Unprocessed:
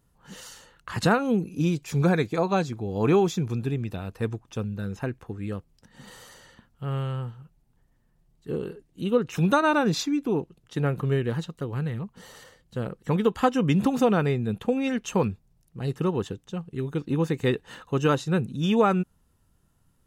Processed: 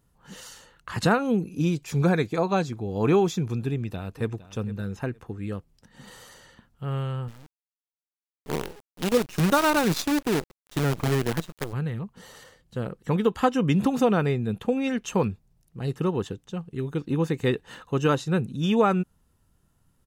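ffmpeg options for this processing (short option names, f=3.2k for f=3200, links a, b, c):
-filter_complex "[0:a]asplit=2[a][b];[b]afade=t=in:st=3.71:d=0.01,afade=t=out:st=4.35:d=0.01,aecho=0:1:460|920:0.158489|0.0316979[c];[a][c]amix=inputs=2:normalize=0,asettb=1/sr,asplit=3[d][e][f];[d]atrim=end=7.284[g];[e]atrim=start=7.28:end=11.73,asetpts=PTS-STARTPTS,afade=t=in:d=0.004:c=qsin,afade=t=out:st=4.446:d=0.004:c=qsin,acrusher=bits=5:dc=4:mix=0:aa=0.000001[h];[f]atrim=start=11.726[i];[g][h]acrossfade=d=0.004:c1=hsin:c2=qsin[j];[j][i]acrossfade=d=0.004:c1=qsin:c2=hsin"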